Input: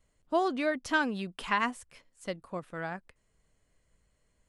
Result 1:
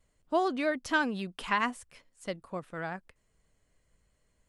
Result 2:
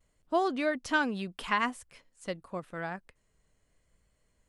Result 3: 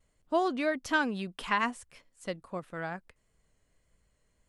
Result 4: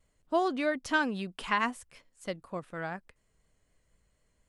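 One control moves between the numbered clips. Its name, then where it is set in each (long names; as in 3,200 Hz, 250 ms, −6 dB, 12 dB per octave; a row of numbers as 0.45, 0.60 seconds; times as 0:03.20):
pitch vibrato, speed: 11, 0.81, 1.6, 4.1 Hertz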